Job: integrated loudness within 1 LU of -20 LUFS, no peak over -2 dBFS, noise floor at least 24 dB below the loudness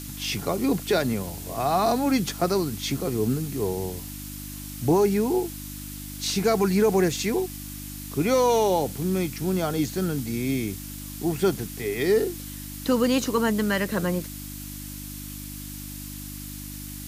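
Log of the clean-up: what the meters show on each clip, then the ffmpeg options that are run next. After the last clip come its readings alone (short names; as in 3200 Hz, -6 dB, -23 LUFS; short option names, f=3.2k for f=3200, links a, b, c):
hum 50 Hz; harmonics up to 300 Hz; hum level -37 dBFS; noise floor -37 dBFS; noise floor target -49 dBFS; loudness -25.0 LUFS; peak -10.5 dBFS; loudness target -20.0 LUFS
-> -af "bandreject=f=50:t=h:w=4,bandreject=f=100:t=h:w=4,bandreject=f=150:t=h:w=4,bandreject=f=200:t=h:w=4,bandreject=f=250:t=h:w=4,bandreject=f=300:t=h:w=4"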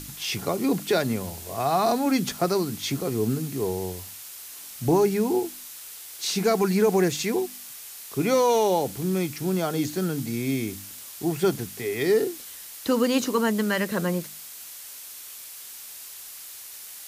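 hum none; noise floor -42 dBFS; noise floor target -49 dBFS
-> -af "afftdn=nr=7:nf=-42"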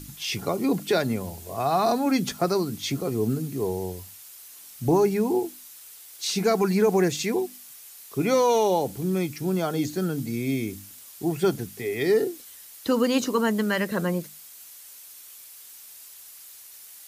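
noise floor -46 dBFS; noise floor target -50 dBFS
-> -af "afftdn=nr=6:nf=-46"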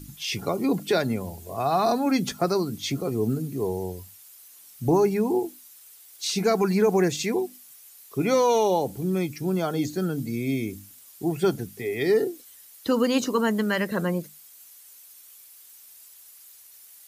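noise floor -50 dBFS; loudness -25.5 LUFS; peak -10.5 dBFS; loudness target -20.0 LUFS
-> -af "volume=5.5dB"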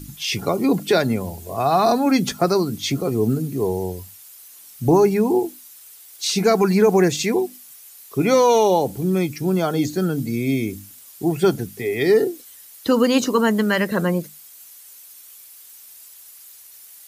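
loudness -20.0 LUFS; peak -5.0 dBFS; noise floor -45 dBFS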